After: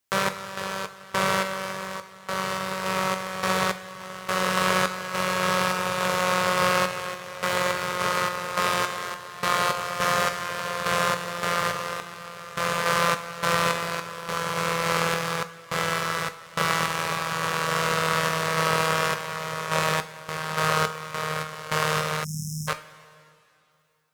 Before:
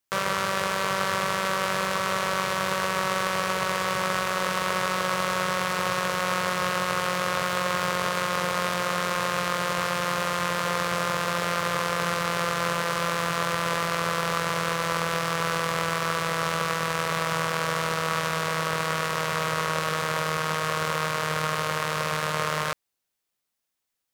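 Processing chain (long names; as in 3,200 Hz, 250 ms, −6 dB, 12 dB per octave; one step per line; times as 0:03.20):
sample-and-hold tremolo, depth 95%
coupled-rooms reverb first 0.32 s, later 2.7 s, from −19 dB, DRR 8.5 dB
time-frequency box erased 0:22.24–0:22.68, 250–5,100 Hz
level +4 dB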